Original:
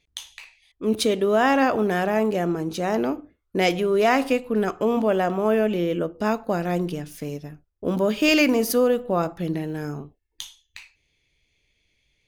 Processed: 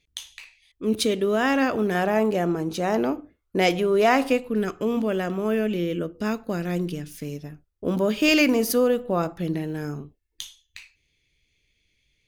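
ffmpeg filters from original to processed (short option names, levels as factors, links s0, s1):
-af "asetnsamples=n=441:p=0,asendcmd='1.95 equalizer g 0.5;4.48 equalizer g -10;7.39 equalizer g -2.5;9.95 equalizer g -8.5',equalizer=f=790:t=o:w=1.2:g=-6.5"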